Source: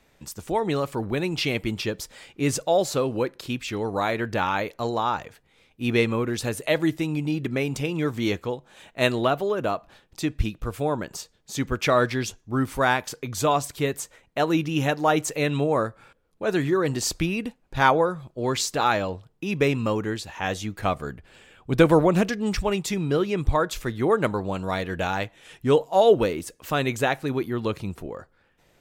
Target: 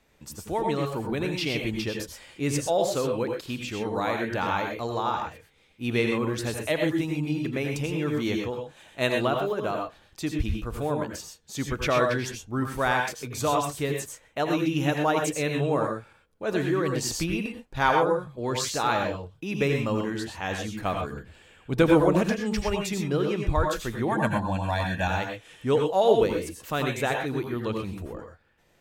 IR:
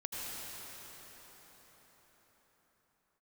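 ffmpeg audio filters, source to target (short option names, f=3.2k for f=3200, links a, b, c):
-filter_complex "[0:a]asettb=1/sr,asplit=3[a][b][c];[a]atrim=end=24.084[d];[b]atrim=start=24.08:end=25.08,asetpts=PTS-STARTPTS,afade=t=in:d=0.004:c=qsin,afade=t=out:st=0.996:d=0.004:c=qsin,aecho=1:1:1.2:0.96,atrim=end_sample=44100[e];[c]atrim=start=25.076[f];[d][e]acrossfade=d=0.004:c1=hsin:c2=qsin[g];[g][f]acrossfade=d=0.004:c1=qsin:c2=hsin[h];[1:a]atrim=start_sample=2205,afade=t=out:st=0.18:d=0.01,atrim=end_sample=8379[i];[h][i]afir=irnorm=-1:irlink=0"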